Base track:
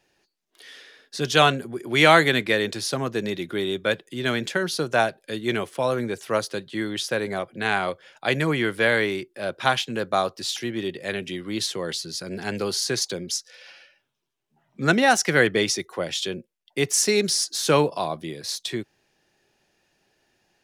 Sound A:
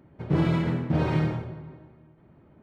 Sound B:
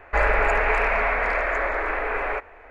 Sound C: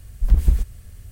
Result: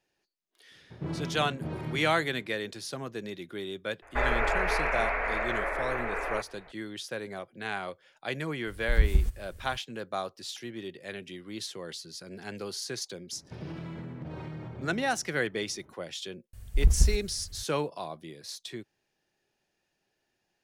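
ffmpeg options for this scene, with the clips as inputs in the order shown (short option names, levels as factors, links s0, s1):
-filter_complex "[1:a]asplit=2[s0][s1];[3:a]asplit=2[s2][s3];[0:a]volume=0.282[s4];[s0]aresample=32000,aresample=44100[s5];[s1]acompressor=threshold=0.02:ratio=6:attack=3.2:release=140:knee=1:detection=peak[s6];[s3]bandreject=f=310:w=5.2[s7];[s5]atrim=end=2.62,asetpts=PTS-STARTPTS,volume=0.251,afade=t=in:d=0.004:c=hsin,afade=t=out:st=2.616:d=0.004:c=hsin,adelay=710[s8];[2:a]atrim=end=2.7,asetpts=PTS-STARTPTS,volume=0.447,afade=t=in:d=0.004:c=hsin,afade=t=out:st=2.696:d=0.004:c=hsin,adelay=4020[s9];[s2]atrim=end=1.11,asetpts=PTS-STARTPTS,volume=0.447,afade=t=in:d=0.004:c=hsin,afade=t=out:st=1.106:d=0.004:c=hsin,adelay=8670[s10];[s6]atrim=end=2.62,asetpts=PTS-STARTPTS,volume=0.708,afade=t=in:d=0.004:c=hsin,afade=t=out:st=2.616:d=0.004:c=hsin,adelay=587412S[s11];[s7]atrim=end=1.11,asetpts=PTS-STARTPTS,volume=0.531,afade=t=in:d=0.004:c=hsin,afade=t=out:st=1.106:d=0.004:c=hsin,adelay=16530[s12];[s4][s8][s9][s10][s11][s12]amix=inputs=6:normalize=0"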